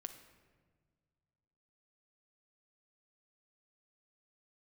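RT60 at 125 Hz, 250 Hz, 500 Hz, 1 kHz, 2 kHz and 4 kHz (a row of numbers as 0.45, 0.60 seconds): 2.6, 2.2, 1.8, 1.4, 1.2, 0.95 seconds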